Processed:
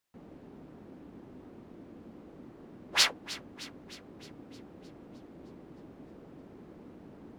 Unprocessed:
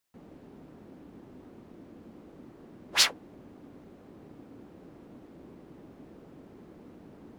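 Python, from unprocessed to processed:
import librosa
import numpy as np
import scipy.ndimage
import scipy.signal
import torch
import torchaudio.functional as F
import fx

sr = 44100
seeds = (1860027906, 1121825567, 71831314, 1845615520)

y = fx.high_shelf(x, sr, hz=5800.0, db=-5.5)
y = fx.echo_thinned(y, sr, ms=308, feedback_pct=59, hz=420.0, wet_db=-16.5)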